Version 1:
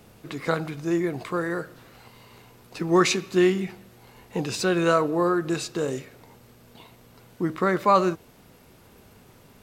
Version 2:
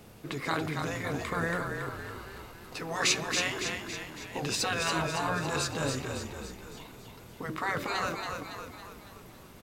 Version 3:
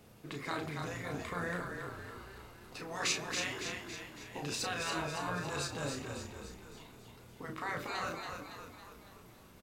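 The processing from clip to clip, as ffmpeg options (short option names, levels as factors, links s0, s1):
-filter_complex "[0:a]afftfilt=real='re*lt(hypot(re,im),0.251)':imag='im*lt(hypot(re,im),0.251)':win_size=1024:overlap=0.75,asplit=8[s0][s1][s2][s3][s4][s5][s6][s7];[s1]adelay=279,afreqshift=-37,volume=0.562[s8];[s2]adelay=558,afreqshift=-74,volume=0.299[s9];[s3]adelay=837,afreqshift=-111,volume=0.158[s10];[s4]adelay=1116,afreqshift=-148,volume=0.0841[s11];[s5]adelay=1395,afreqshift=-185,volume=0.0442[s12];[s6]adelay=1674,afreqshift=-222,volume=0.0234[s13];[s7]adelay=1953,afreqshift=-259,volume=0.0124[s14];[s0][s8][s9][s10][s11][s12][s13][s14]amix=inputs=8:normalize=0"
-filter_complex "[0:a]asplit=2[s0][s1];[s1]adelay=34,volume=0.501[s2];[s0][s2]amix=inputs=2:normalize=0,volume=0.422"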